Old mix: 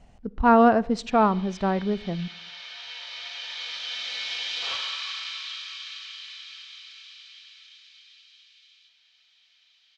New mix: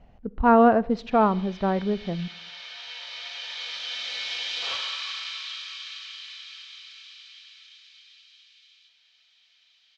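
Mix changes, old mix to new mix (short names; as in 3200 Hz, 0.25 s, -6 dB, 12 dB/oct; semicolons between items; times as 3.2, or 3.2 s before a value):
speech: add air absorption 210 m; master: add bell 520 Hz +2.5 dB 0.67 oct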